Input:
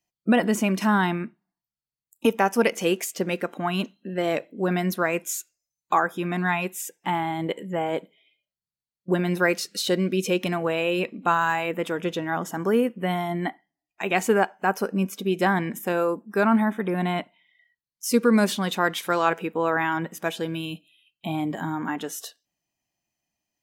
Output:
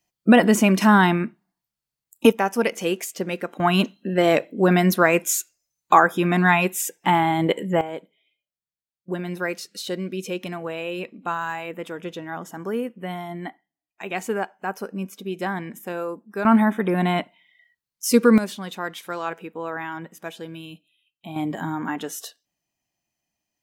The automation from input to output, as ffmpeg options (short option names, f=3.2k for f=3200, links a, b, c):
-af "asetnsamples=n=441:p=0,asendcmd='2.32 volume volume -1dB;3.6 volume volume 7dB;7.81 volume volume -5.5dB;16.45 volume volume 4dB;18.38 volume volume -7dB;21.36 volume volume 1dB',volume=6dB"